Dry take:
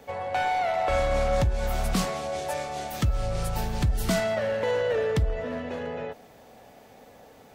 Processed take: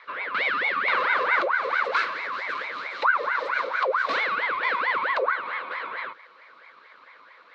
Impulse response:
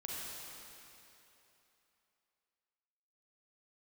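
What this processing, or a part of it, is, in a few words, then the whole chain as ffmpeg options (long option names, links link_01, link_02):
voice changer toy: -af "aeval=exprs='val(0)*sin(2*PI*1000*n/s+1000*0.55/4.5*sin(2*PI*4.5*n/s))':channel_layout=same,highpass=480,equalizer=frequency=510:width_type=q:width=4:gain=8,equalizer=frequency=750:width_type=q:width=4:gain=-9,equalizer=frequency=1100:width_type=q:width=4:gain=9,equalizer=frequency=1500:width_type=q:width=4:gain=6,equalizer=frequency=2200:width_type=q:width=4:gain=9,equalizer=frequency=4000:width_type=q:width=4:gain=9,lowpass=frequency=4400:width=0.5412,lowpass=frequency=4400:width=1.3066,volume=-1.5dB"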